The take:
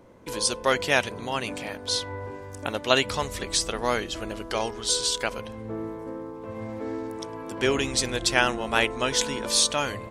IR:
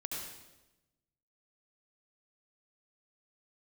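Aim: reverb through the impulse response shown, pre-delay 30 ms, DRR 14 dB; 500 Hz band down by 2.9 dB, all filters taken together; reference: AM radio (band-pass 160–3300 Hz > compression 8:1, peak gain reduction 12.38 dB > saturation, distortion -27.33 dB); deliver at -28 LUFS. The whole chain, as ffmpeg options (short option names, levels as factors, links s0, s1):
-filter_complex "[0:a]equalizer=f=500:t=o:g=-3.5,asplit=2[s0][s1];[1:a]atrim=start_sample=2205,adelay=30[s2];[s1][s2]afir=irnorm=-1:irlink=0,volume=0.178[s3];[s0][s3]amix=inputs=2:normalize=0,highpass=160,lowpass=3300,acompressor=threshold=0.0398:ratio=8,asoftclip=threshold=0.188,volume=2.11"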